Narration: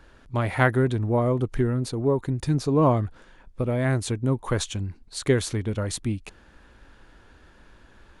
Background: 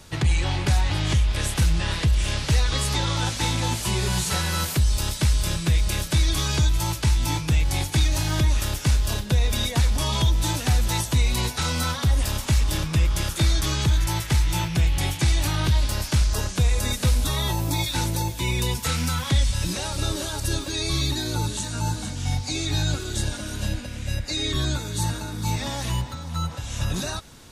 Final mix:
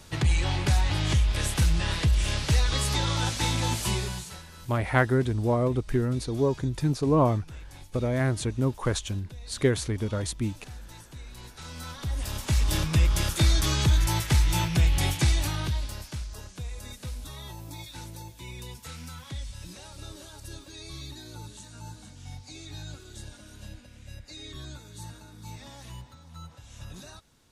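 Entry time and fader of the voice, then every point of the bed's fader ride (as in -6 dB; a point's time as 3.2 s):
4.35 s, -2.0 dB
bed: 3.92 s -2.5 dB
4.48 s -23 dB
11.27 s -23 dB
12.74 s -1 dB
15.2 s -1 dB
16.28 s -16.5 dB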